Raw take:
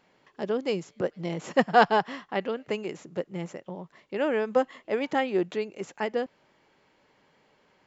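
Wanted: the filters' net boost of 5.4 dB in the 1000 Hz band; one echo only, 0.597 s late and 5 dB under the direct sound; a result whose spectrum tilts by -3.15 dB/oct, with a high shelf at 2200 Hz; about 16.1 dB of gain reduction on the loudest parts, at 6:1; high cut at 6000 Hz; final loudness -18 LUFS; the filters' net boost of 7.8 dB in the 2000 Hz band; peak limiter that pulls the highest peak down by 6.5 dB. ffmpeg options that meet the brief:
-af "lowpass=6k,equalizer=f=1k:t=o:g=5.5,equalizer=f=2k:t=o:g=4,highshelf=f=2.2k:g=8,acompressor=threshold=-26dB:ratio=6,alimiter=limit=-20dB:level=0:latency=1,aecho=1:1:597:0.562,volume=15.5dB"

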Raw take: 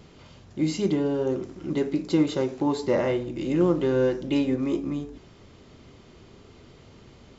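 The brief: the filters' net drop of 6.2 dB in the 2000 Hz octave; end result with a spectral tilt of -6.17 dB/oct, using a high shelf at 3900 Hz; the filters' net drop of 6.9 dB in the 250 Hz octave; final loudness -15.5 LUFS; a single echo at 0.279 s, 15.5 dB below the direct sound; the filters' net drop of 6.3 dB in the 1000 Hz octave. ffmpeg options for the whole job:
-af "equalizer=f=250:t=o:g=-9,equalizer=f=1k:t=o:g=-6,equalizer=f=2k:t=o:g=-7,highshelf=f=3.9k:g=4,aecho=1:1:279:0.168,volume=15dB"

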